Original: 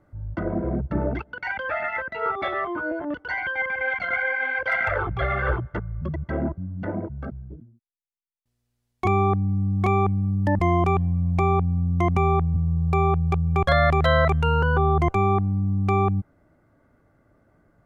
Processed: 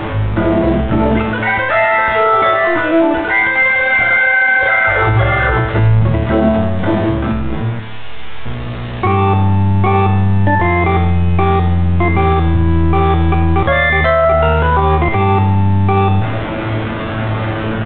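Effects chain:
converter with a step at zero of −23.5 dBFS
low-pass filter 3,000 Hz 6 dB per octave
tuned comb filter 110 Hz, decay 0.92 s, harmonics all, mix 90%
on a send: echo with shifted repeats 87 ms, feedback 44%, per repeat +69 Hz, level −21 dB
on the sum: boost into a limiter +27 dB
level −3 dB
A-law companding 64 kbit/s 8,000 Hz

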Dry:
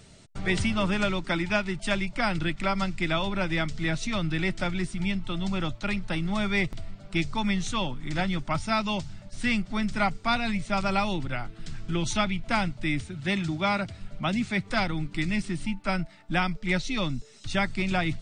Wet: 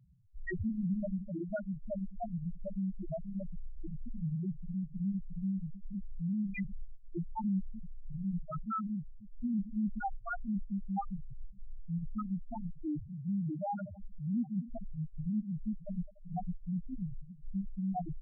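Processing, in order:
feedback delay that plays each chunk backwards 148 ms, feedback 54%, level −12.5 dB
spectral peaks only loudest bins 1

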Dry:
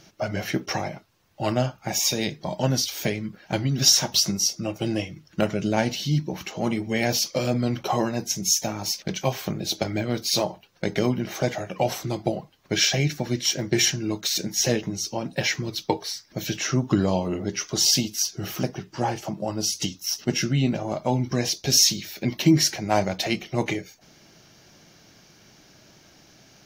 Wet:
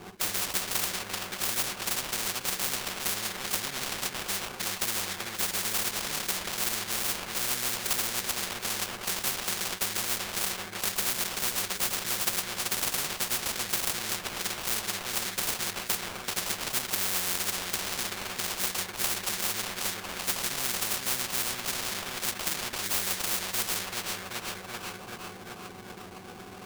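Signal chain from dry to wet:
in parallel at +1 dB: speech leveller 0.5 s
on the sum: high-pass filter 200 Hz 12 dB per octave
resonances in every octave F#, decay 0.1 s
bucket-brigade delay 384 ms, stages 4,096, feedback 61%, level −12.5 dB
sample-rate reduction 1,900 Hz, jitter 20%
every bin compressed towards the loudest bin 10 to 1
level +6 dB

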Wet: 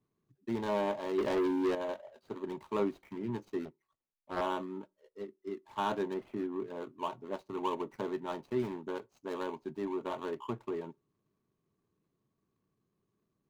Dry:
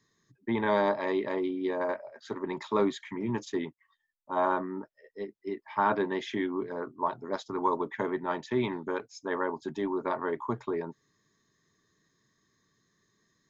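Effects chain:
running median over 25 samples
0:01.18–0:01.75: leveller curve on the samples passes 3
0:06.14–0:06.60: high-shelf EQ 2,300 Hz −9.5 dB
convolution reverb RT60 0.25 s, pre-delay 3 ms, DRR 20.5 dB
0:03.65–0:04.41: highs frequency-modulated by the lows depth 0.6 ms
level −5 dB

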